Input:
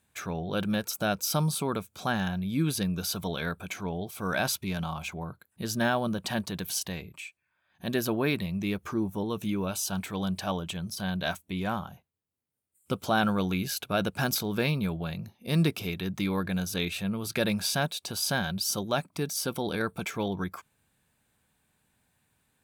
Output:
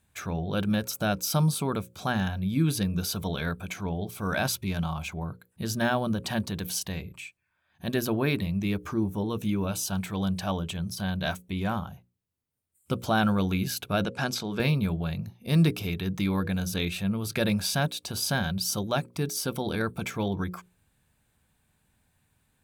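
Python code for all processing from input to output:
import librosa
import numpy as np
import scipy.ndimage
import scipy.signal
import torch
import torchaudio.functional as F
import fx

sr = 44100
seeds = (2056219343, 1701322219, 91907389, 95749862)

y = fx.chain(x, sr, fx.bandpass_edges(low_hz=130.0, high_hz=7200.0),
    fx.low_shelf(hz=230.0, db=-5.0), at=(14.04, 14.6))
y = fx.low_shelf(y, sr, hz=120.0, db=11.0)
y = fx.hum_notches(y, sr, base_hz=60, count=9)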